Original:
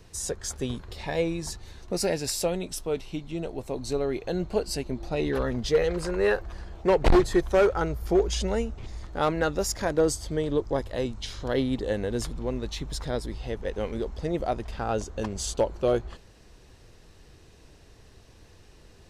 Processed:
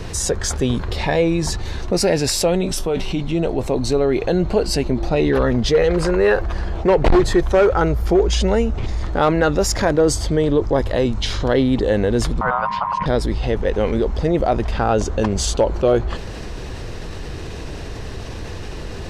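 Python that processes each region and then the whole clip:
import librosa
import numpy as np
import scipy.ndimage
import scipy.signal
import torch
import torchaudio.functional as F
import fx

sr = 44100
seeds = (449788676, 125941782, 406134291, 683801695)

y = fx.chain(x, sr, fx.comb_fb(f0_hz=190.0, decay_s=0.18, harmonics='all', damping=0.0, mix_pct=60),
    fx.env_flatten(amount_pct=50), at=(2.61, 3.21))
y = fx.chain(y, sr, fx.lowpass(hz=2000.0, slope=12),
    fx.ring_mod(carrier_hz=1000.0),
    fx.low_shelf_res(hz=240.0, db=7.0, q=3.0), at=(12.41, 13.06))
y = fx.lowpass(y, sr, hz=3700.0, slope=6)
y = fx.env_flatten(y, sr, amount_pct=50)
y = y * 10.0 ** (4.5 / 20.0)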